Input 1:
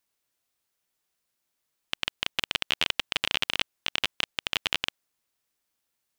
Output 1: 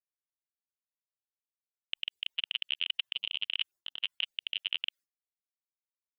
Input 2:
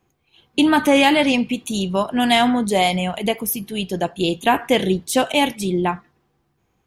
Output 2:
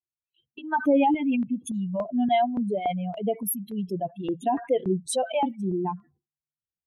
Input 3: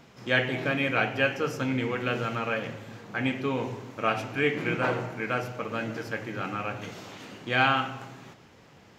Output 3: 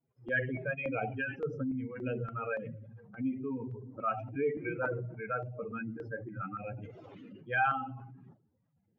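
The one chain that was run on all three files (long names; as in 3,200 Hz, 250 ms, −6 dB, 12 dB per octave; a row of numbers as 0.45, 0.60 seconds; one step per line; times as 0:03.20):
expanding power law on the bin magnitudes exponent 2.7
downward expander −44 dBFS
notch on a step sequencer 3.5 Hz 200–2,400 Hz
level −4.5 dB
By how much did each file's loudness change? −5.0, −7.5, −7.5 LU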